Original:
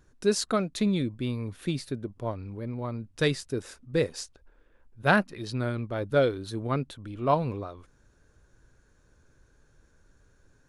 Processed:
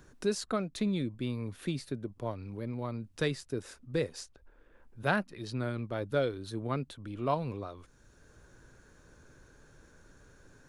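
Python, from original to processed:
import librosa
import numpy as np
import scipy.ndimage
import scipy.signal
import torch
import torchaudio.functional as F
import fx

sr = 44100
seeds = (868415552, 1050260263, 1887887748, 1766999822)

y = fx.band_squash(x, sr, depth_pct=40)
y = F.gain(torch.from_numpy(y), -5.0).numpy()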